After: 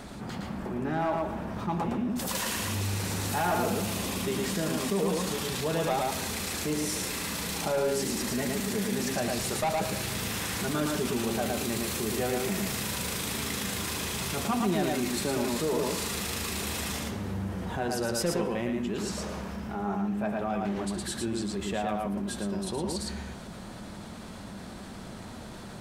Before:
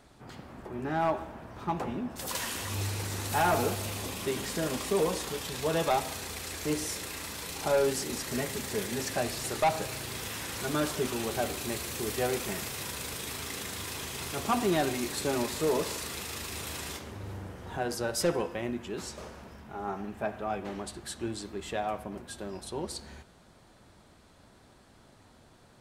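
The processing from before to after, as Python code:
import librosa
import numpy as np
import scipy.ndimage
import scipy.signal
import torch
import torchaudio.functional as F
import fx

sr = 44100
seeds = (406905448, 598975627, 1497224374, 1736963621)

y = fx.peak_eq(x, sr, hz=200.0, db=10.5, octaves=0.4)
y = y + 10.0 ** (-3.5 / 20.0) * np.pad(y, (int(113 * sr / 1000.0), 0))[:len(y)]
y = fx.env_flatten(y, sr, amount_pct=50)
y = y * librosa.db_to_amplitude(-5.0)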